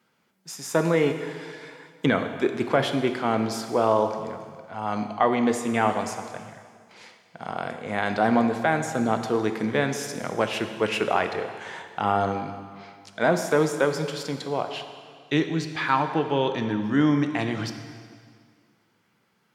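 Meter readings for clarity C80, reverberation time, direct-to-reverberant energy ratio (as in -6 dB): 9.5 dB, 2.0 s, 6.5 dB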